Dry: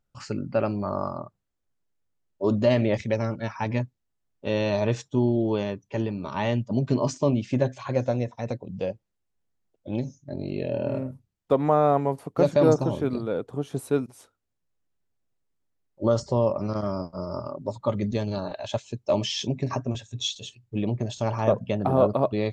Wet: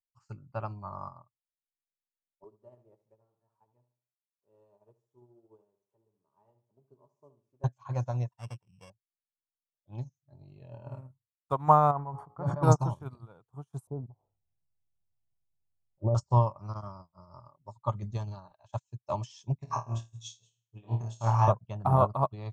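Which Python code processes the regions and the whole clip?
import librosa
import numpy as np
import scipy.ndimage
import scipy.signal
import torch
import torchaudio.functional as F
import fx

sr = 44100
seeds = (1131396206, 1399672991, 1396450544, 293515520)

y = fx.chain(x, sr, fx.crossing_spikes(level_db=-23.0),
    fx.bandpass_q(hz=420.0, q=3.6),
    fx.echo_feedback(ms=73, feedback_pct=39, wet_db=-8.0), at=(2.44, 7.64))
y = fx.chain(y, sr, fx.sample_sort(block=16),
    fx.lowpass(hz=5200.0, slope=12), at=(8.32, 8.9))
y = fx.chain(y, sr, fx.savgol(points=41),
    fx.comb_fb(f0_hz=60.0, decay_s=1.5, harmonics='all', damping=0.0, mix_pct=40),
    fx.sustainer(db_per_s=28.0), at=(11.91, 12.63))
y = fx.chain(y, sr, fx.steep_lowpass(hz=740.0, slope=36),
    fx.env_flatten(amount_pct=50), at=(13.87, 16.15))
y = fx.chain(y, sr, fx.low_shelf(hz=200.0, db=-7.5),
    fx.room_flutter(wall_m=4.5, rt60_s=0.47), at=(19.56, 21.48))
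y = fx.graphic_eq(y, sr, hz=(125, 250, 500, 1000, 2000, 4000, 8000), db=(6, -12, -12, 10, -11, -7, 4))
y = fx.upward_expand(y, sr, threshold_db=-44.0, expansion=2.5)
y = F.gain(torch.from_numpy(y), 5.0).numpy()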